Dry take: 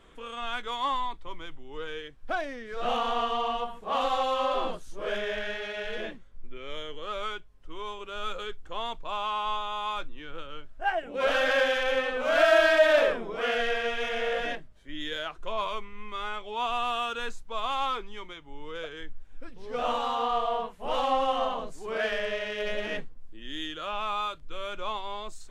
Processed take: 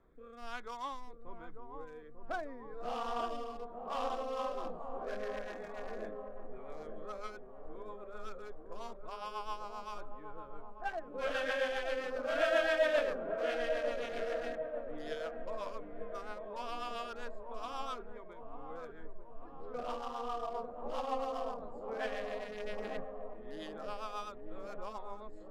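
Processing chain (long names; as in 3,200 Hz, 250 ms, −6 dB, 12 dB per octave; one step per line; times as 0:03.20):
adaptive Wiener filter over 15 samples
rotating-speaker cabinet horn 1.2 Hz, later 7.5 Hz, at 0:04.04
delay with a low-pass on its return 895 ms, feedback 58%, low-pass 840 Hz, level −5 dB
level −7 dB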